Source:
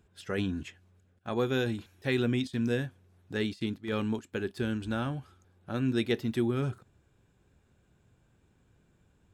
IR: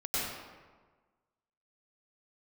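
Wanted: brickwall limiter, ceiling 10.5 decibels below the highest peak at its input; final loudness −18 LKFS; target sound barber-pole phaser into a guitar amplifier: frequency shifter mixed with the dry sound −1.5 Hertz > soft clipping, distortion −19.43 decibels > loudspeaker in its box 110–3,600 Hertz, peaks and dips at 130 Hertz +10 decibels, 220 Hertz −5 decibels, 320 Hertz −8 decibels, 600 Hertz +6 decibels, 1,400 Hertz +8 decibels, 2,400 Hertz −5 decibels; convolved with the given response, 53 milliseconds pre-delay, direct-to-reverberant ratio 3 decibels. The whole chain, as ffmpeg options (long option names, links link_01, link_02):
-filter_complex "[0:a]alimiter=level_in=3dB:limit=-24dB:level=0:latency=1,volume=-3dB,asplit=2[link_01][link_02];[1:a]atrim=start_sample=2205,adelay=53[link_03];[link_02][link_03]afir=irnorm=-1:irlink=0,volume=-10dB[link_04];[link_01][link_04]amix=inputs=2:normalize=0,asplit=2[link_05][link_06];[link_06]afreqshift=-1.5[link_07];[link_05][link_07]amix=inputs=2:normalize=1,asoftclip=threshold=-28.5dB,highpass=110,equalizer=frequency=130:width_type=q:width=4:gain=10,equalizer=frequency=220:width_type=q:width=4:gain=-5,equalizer=frequency=320:width_type=q:width=4:gain=-8,equalizer=frequency=600:width_type=q:width=4:gain=6,equalizer=frequency=1400:width_type=q:width=4:gain=8,equalizer=frequency=2400:width_type=q:width=4:gain=-5,lowpass=frequency=3600:width=0.5412,lowpass=frequency=3600:width=1.3066,volume=21.5dB"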